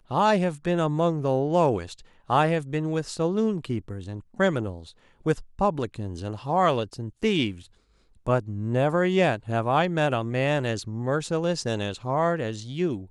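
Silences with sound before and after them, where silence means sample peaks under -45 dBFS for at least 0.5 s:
7.66–8.27

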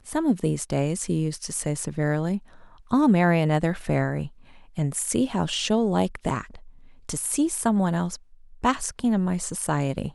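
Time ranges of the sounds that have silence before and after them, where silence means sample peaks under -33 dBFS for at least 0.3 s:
2.91–4.27
4.78–6.56
7.09–8.15

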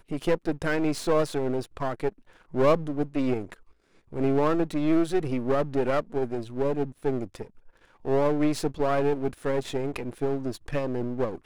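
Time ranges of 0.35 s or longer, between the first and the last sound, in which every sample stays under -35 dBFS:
2.09–2.54
3.54–4.13
7.43–8.05

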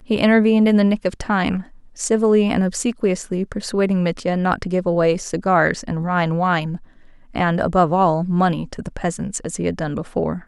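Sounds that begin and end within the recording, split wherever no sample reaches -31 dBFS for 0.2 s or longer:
1.98–6.77

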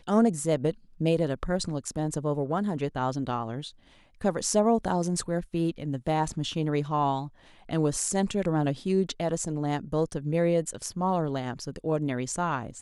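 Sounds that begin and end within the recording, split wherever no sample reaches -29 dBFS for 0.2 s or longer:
1.01–3.61
4.24–7.24

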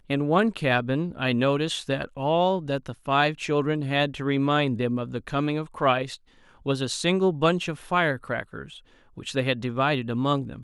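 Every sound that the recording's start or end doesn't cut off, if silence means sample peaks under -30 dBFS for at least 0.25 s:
6.66–8.63

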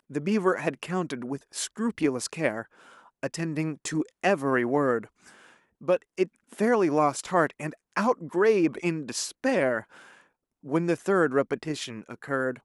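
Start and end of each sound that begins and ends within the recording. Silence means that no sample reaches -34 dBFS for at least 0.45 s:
3.23–5.04
5.88–9.81

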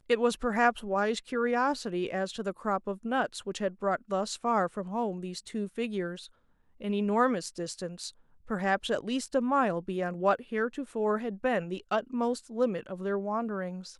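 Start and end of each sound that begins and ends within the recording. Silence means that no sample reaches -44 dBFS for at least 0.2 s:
6.81–8.1

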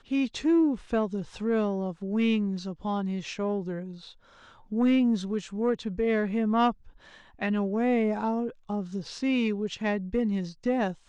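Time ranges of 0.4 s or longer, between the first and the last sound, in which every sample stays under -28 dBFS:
3.79–4.72
6.71–7.42

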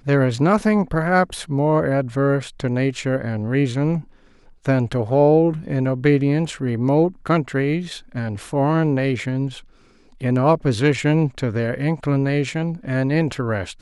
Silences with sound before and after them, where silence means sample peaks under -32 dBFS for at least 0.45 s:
4.02–4.65
9.6–10.21

